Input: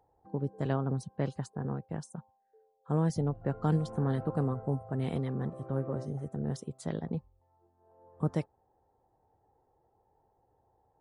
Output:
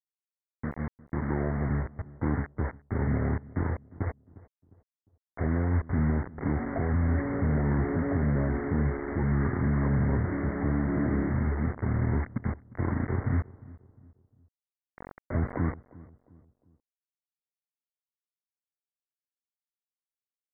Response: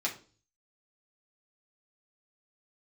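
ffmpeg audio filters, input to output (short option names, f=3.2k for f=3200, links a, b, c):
-filter_complex "[0:a]highpass=180,dynaudnorm=f=240:g=9:m=16dB,alimiter=limit=-16dB:level=0:latency=1:release=26,asoftclip=type=tanh:threshold=-19.5dB,aresample=8000,acrusher=bits=5:mix=0:aa=0.000001,aresample=44100,asetrate=23638,aresample=44100,asplit=2[a][b];[b]adelay=354,lowpass=f=980:p=1,volume=-20dB,asplit=2[c][d];[d]adelay=354,lowpass=f=980:p=1,volume=0.41,asplit=2[e][f];[f]adelay=354,lowpass=f=980:p=1,volume=0.41[g];[a][c][e][g]amix=inputs=4:normalize=0"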